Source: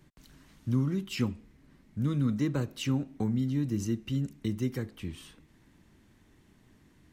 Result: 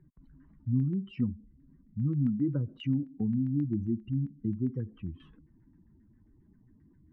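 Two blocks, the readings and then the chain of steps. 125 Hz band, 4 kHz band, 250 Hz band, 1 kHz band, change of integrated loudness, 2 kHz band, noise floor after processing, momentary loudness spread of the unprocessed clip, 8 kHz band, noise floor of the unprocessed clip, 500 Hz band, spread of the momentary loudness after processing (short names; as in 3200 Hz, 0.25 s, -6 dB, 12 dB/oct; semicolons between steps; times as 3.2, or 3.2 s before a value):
0.0 dB, under -10 dB, 0.0 dB, under -15 dB, 0.0 dB, under -10 dB, -63 dBFS, 13 LU, under -30 dB, -62 dBFS, -5.5 dB, 14 LU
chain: spectral contrast raised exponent 2.1; LFO low-pass saw down 7.5 Hz 840–1800 Hz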